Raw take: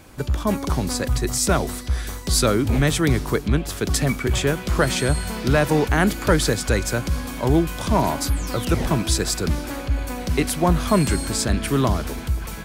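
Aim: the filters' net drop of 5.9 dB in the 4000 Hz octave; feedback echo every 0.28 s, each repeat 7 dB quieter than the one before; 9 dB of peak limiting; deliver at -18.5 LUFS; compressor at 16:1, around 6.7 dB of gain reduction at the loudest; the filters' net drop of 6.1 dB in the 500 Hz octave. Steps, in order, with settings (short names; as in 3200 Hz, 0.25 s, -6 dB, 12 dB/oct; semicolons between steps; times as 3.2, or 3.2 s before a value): bell 500 Hz -8 dB; bell 4000 Hz -7.5 dB; compressor 16:1, threshold -21 dBFS; limiter -22 dBFS; feedback echo 0.28 s, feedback 45%, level -7 dB; gain +12 dB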